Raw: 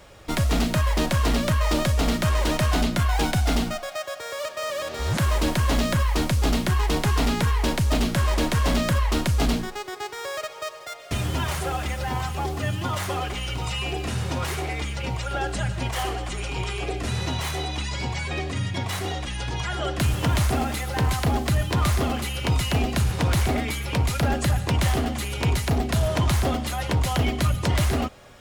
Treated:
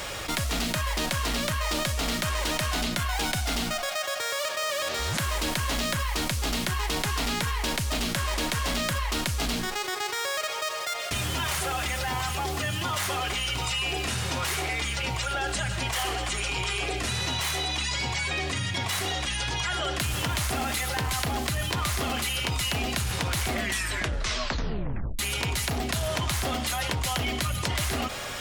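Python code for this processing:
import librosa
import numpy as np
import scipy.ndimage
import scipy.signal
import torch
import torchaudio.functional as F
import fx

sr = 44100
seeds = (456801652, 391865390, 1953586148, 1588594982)

y = fx.edit(x, sr, fx.tape_stop(start_s=23.48, length_s=1.71), tone=tone)
y = fx.tilt_shelf(y, sr, db=-5.5, hz=970.0)
y = fx.env_flatten(y, sr, amount_pct=70)
y = y * librosa.db_to_amplitude(-5.5)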